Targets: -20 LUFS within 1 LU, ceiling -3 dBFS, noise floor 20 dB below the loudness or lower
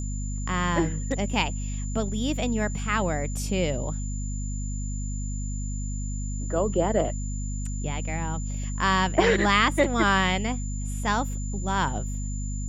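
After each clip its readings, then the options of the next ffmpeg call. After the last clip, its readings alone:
hum 50 Hz; harmonics up to 250 Hz; hum level -28 dBFS; steady tone 7100 Hz; tone level -40 dBFS; loudness -27.0 LUFS; peak -7.5 dBFS; loudness target -20.0 LUFS
-> -af "bandreject=f=50:t=h:w=4,bandreject=f=100:t=h:w=4,bandreject=f=150:t=h:w=4,bandreject=f=200:t=h:w=4,bandreject=f=250:t=h:w=4"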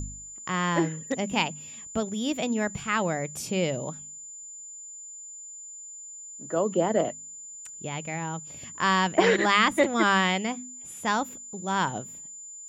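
hum none; steady tone 7100 Hz; tone level -40 dBFS
-> -af "bandreject=f=7.1k:w=30"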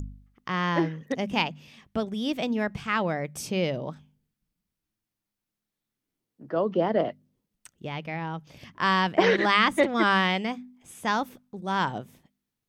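steady tone none; loudness -26.5 LUFS; peak -7.0 dBFS; loudness target -20.0 LUFS
-> -af "volume=6.5dB,alimiter=limit=-3dB:level=0:latency=1"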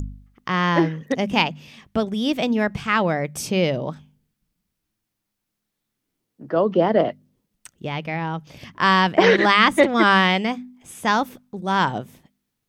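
loudness -20.0 LUFS; peak -3.0 dBFS; noise floor -80 dBFS

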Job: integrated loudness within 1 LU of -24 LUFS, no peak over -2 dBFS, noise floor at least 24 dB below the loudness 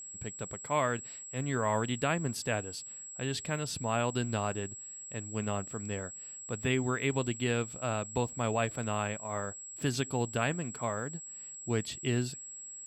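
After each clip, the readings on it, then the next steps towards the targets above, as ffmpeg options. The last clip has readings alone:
steady tone 7700 Hz; tone level -43 dBFS; loudness -34.0 LUFS; peak -16.0 dBFS; loudness target -24.0 LUFS
-> -af "bandreject=f=7.7k:w=30"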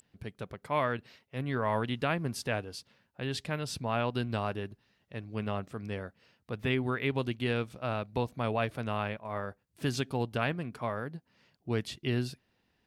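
steady tone none; loudness -34.0 LUFS; peak -16.5 dBFS; loudness target -24.0 LUFS
-> -af "volume=10dB"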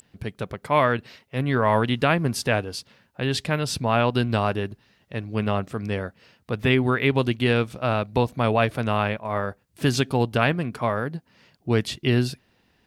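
loudness -24.0 LUFS; peak -6.5 dBFS; noise floor -65 dBFS

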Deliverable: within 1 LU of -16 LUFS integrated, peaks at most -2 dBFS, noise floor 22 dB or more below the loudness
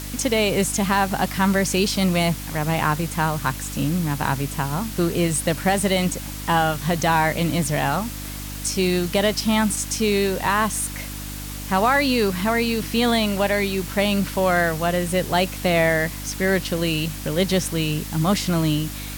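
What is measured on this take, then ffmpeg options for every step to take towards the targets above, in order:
hum 50 Hz; harmonics up to 300 Hz; hum level -31 dBFS; noise floor -32 dBFS; noise floor target -44 dBFS; loudness -21.5 LUFS; peak -6.0 dBFS; loudness target -16.0 LUFS
-> -af "bandreject=f=50:t=h:w=4,bandreject=f=100:t=h:w=4,bandreject=f=150:t=h:w=4,bandreject=f=200:t=h:w=4,bandreject=f=250:t=h:w=4,bandreject=f=300:t=h:w=4"
-af "afftdn=nr=12:nf=-32"
-af "volume=5.5dB,alimiter=limit=-2dB:level=0:latency=1"

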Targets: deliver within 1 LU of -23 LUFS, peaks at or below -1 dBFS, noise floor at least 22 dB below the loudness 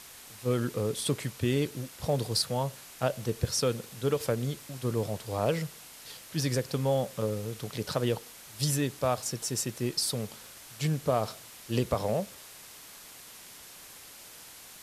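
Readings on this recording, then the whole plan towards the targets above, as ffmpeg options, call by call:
noise floor -49 dBFS; noise floor target -53 dBFS; loudness -31.0 LUFS; peak -13.0 dBFS; loudness target -23.0 LUFS
-> -af "afftdn=nr=6:nf=-49"
-af "volume=8dB"

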